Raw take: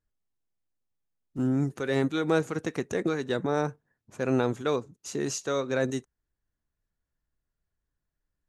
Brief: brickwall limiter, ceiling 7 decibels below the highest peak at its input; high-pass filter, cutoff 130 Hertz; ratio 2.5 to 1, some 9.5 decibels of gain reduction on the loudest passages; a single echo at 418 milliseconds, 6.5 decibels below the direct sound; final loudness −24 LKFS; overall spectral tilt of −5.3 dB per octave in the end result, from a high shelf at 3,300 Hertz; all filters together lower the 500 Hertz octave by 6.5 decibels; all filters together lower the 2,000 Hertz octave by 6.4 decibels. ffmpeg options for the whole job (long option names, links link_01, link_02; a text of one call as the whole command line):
ffmpeg -i in.wav -af "highpass=130,equalizer=frequency=500:width_type=o:gain=-7.5,equalizer=frequency=2000:width_type=o:gain=-6.5,highshelf=frequency=3300:gain=-7,acompressor=threshold=-39dB:ratio=2.5,alimiter=level_in=9.5dB:limit=-24dB:level=0:latency=1,volume=-9.5dB,aecho=1:1:418:0.473,volume=20dB" out.wav